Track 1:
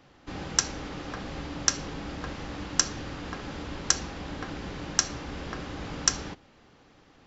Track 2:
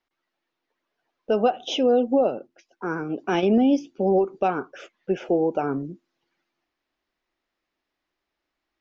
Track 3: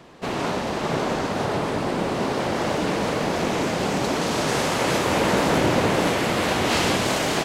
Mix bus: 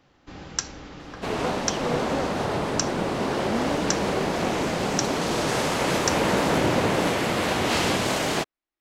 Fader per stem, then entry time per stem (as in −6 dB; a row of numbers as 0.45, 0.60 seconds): −3.5, −12.0, −2.0 decibels; 0.00, 0.00, 1.00 seconds